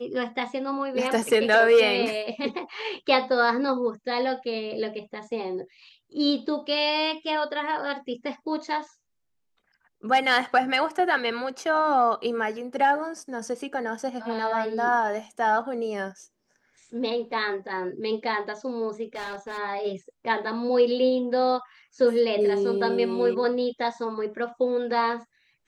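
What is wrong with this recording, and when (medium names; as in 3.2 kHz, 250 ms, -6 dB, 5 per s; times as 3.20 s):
19.15–19.59 s: clipped -30.5 dBFS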